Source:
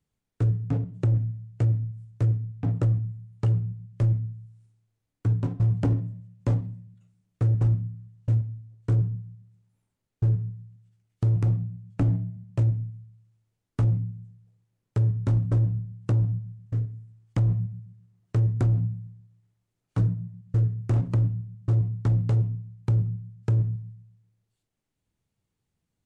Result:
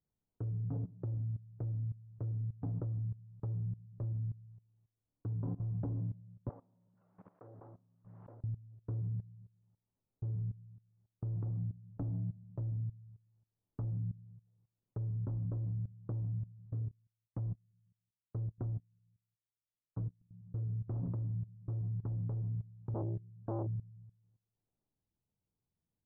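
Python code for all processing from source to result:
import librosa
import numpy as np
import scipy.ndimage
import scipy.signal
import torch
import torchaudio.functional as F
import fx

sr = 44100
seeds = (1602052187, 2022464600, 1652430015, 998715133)

y = fx.chain(x, sr, fx.highpass(hz=640.0, slope=12),
    fx.pre_swell(db_per_s=38.0), at=(6.49, 8.44))
y = fx.chain(y, sr, fx.level_steps(step_db=12),
    fx.upward_expand(threshold_db=-36.0, expansion=2.5), at=(16.91, 20.31))
y = fx.chain(y, sr, fx.brickwall_lowpass(high_hz=1600.0),
    fx.transformer_sat(knee_hz=470.0), at=(22.94, 23.67))
y = scipy.signal.sosfilt(scipy.signal.butter(4, 1100.0, 'lowpass', fs=sr, output='sos'), y)
y = fx.level_steps(y, sr, step_db=18)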